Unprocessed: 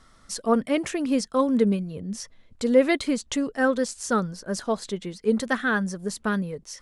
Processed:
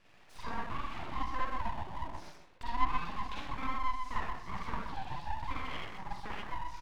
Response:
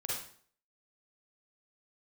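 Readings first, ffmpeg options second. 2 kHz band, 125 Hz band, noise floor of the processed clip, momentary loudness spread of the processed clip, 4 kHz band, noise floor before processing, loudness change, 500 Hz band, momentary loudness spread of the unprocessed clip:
-13.5 dB, -10.5 dB, -58 dBFS, 9 LU, -11.5 dB, -56 dBFS, -14.0 dB, -26.0 dB, 12 LU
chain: -filter_complex "[0:a]acrossover=split=390 2400:gain=0.0708 1 0.112[a][b][c];[a][b][c]amix=inputs=3:normalize=0,asplit=2[d][e];[e]adelay=16,volume=-13.5dB[f];[d][f]amix=inputs=2:normalize=0,acompressor=threshold=-38dB:ratio=6,equalizer=f=500:t=o:w=1:g=8,equalizer=f=4k:t=o:w=1:g=10,equalizer=f=8k:t=o:w=1:g=-9,asplit=2[g][h];[h]adelay=125,lowpass=f=820:p=1,volume=-3.5dB,asplit=2[i][j];[j]adelay=125,lowpass=f=820:p=1,volume=0.31,asplit=2[k][l];[l]adelay=125,lowpass=f=820:p=1,volume=0.31,asplit=2[m][n];[n]adelay=125,lowpass=f=820:p=1,volume=0.31[o];[g][i][k][m][o]amix=inputs=5:normalize=0[p];[1:a]atrim=start_sample=2205,afade=t=out:st=0.27:d=0.01,atrim=end_sample=12348[q];[p][q]afir=irnorm=-1:irlink=0,aeval=exprs='abs(val(0))':c=same,acrossover=split=4200[r][s];[s]acompressor=threshold=-59dB:ratio=4:attack=1:release=60[t];[r][t]amix=inputs=2:normalize=0,volume=-2dB"

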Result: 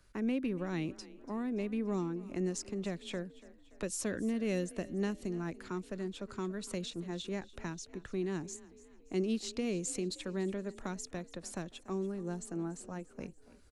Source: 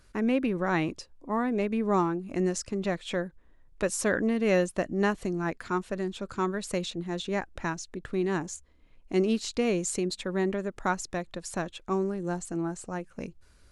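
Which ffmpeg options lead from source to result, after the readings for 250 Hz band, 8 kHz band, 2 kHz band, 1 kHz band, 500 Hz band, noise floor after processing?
-6.5 dB, -6.0 dB, -12.5 dB, -15.0 dB, -9.0 dB, -59 dBFS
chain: -filter_complex "[0:a]acrossover=split=120|420|2600[a][b][c][d];[c]acompressor=threshold=-39dB:ratio=6[e];[a][b][e][d]amix=inputs=4:normalize=0,asplit=5[f][g][h][i][j];[g]adelay=287,afreqshift=30,volume=-19dB[k];[h]adelay=574,afreqshift=60,volume=-25dB[l];[i]adelay=861,afreqshift=90,volume=-31dB[m];[j]adelay=1148,afreqshift=120,volume=-37.1dB[n];[f][k][l][m][n]amix=inputs=5:normalize=0,volume=-6dB"

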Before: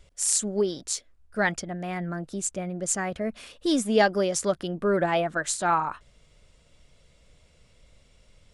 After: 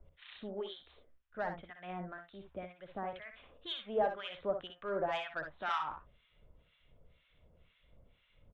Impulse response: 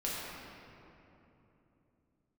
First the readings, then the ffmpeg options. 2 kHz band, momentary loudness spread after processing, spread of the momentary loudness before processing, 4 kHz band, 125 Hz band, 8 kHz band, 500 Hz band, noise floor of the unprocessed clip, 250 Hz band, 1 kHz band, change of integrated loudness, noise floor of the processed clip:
-13.5 dB, 14 LU, 10 LU, -9.5 dB, -18.0 dB, under -40 dB, -12.0 dB, -60 dBFS, -19.5 dB, -10.5 dB, -13.0 dB, -73 dBFS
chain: -filter_complex "[0:a]acrossover=split=100|490|1800[a][b][c][d];[b]acompressor=threshold=-44dB:ratio=6[e];[a][e][c][d]amix=inputs=4:normalize=0,aresample=8000,aresample=44100,asoftclip=type=tanh:threshold=-17.5dB,acrossover=split=1100[f][g];[f]aeval=exprs='val(0)*(1-1/2+1/2*cos(2*PI*2*n/s))':c=same[h];[g]aeval=exprs='val(0)*(1-1/2-1/2*cos(2*PI*2*n/s))':c=same[i];[h][i]amix=inputs=2:normalize=0,aecho=1:1:61|74:0.422|0.188,volume=-3.5dB"

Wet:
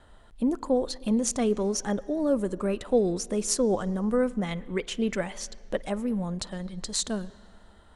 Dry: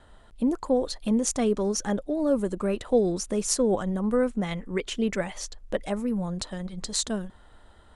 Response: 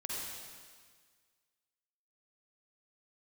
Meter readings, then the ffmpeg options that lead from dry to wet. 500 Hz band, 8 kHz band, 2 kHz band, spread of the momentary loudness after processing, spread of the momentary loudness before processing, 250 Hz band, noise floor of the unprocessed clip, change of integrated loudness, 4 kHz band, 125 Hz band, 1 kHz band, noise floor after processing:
-1.0 dB, -1.0 dB, -1.0 dB, 9 LU, 9 LU, -1.0 dB, -54 dBFS, -1.0 dB, -1.0 dB, -1.0 dB, -1.0 dB, -54 dBFS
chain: -filter_complex "[0:a]asplit=2[a][b];[1:a]atrim=start_sample=2205,lowpass=4k,adelay=52[c];[b][c]afir=irnorm=-1:irlink=0,volume=-21dB[d];[a][d]amix=inputs=2:normalize=0,volume=-1dB"

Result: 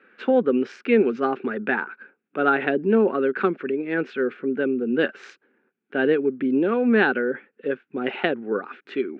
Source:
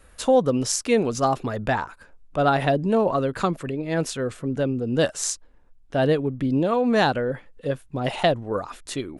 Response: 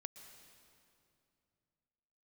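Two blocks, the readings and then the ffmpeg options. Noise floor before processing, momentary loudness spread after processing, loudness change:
-53 dBFS, 10 LU, +0.5 dB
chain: -af "highpass=f=220:w=0.5412,highpass=f=220:w=1.3066,equalizer=f=220:t=q:w=4:g=7,equalizer=f=390:t=q:w=4:g=10,equalizer=f=640:t=q:w=4:g=-10,equalizer=f=1k:t=q:w=4:g=-8,equalizer=f=1.5k:t=q:w=4:g=10,equalizer=f=2.4k:t=q:w=4:g=6,lowpass=f=2.8k:w=0.5412,lowpass=f=2.8k:w=1.3066,volume=-1dB"

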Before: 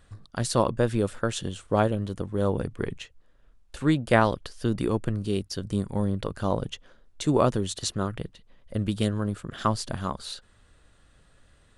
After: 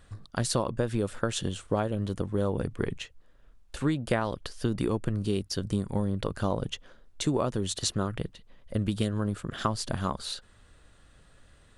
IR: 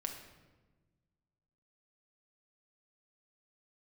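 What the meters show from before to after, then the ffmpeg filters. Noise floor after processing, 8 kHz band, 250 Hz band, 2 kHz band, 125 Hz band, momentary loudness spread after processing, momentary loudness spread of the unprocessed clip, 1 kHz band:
-58 dBFS, +0.5 dB, -3.0 dB, -4.5 dB, -2.5 dB, 7 LU, 12 LU, -5.5 dB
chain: -af "acompressor=threshold=-24dB:ratio=12,volume=1.5dB"

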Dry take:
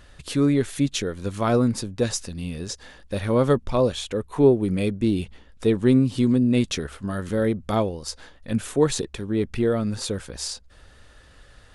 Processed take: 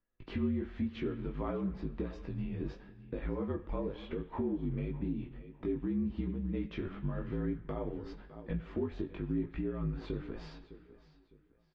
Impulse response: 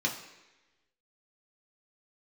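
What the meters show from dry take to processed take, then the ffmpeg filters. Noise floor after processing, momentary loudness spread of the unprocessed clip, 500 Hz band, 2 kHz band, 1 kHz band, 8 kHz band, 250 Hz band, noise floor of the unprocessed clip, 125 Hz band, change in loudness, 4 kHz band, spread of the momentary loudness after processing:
-66 dBFS, 13 LU, -17.0 dB, -15.5 dB, -16.0 dB, under -40 dB, -13.0 dB, -51 dBFS, -12.5 dB, -14.5 dB, -23.5 dB, 10 LU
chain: -filter_complex "[0:a]agate=range=-31dB:threshold=-40dB:ratio=16:detection=peak,lowpass=f=2.6k:w=0.5412,lowpass=f=2.6k:w=1.3066,acompressor=threshold=-31dB:ratio=2.5,afreqshift=-53,equalizer=f=290:t=o:w=0.68:g=7,aecho=1:1:606|1212|1818:0.141|0.041|0.0119,flanger=delay=17:depth=4.1:speed=0.94,alimiter=limit=-24dB:level=0:latency=1:release=175,asplit=2[a][b];[b]equalizer=f=2k:t=o:w=2.7:g=6[c];[1:a]atrim=start_sample=2205,asetrate=30429,aresample=44100[d];[c][d]afir=irnorm=-1:irlink=0,volume=-22dB[e];[a][e]amix=inputs=2:normalize=0,volume=-2dB" -ar 48000 -c:a aac -b:a 48k

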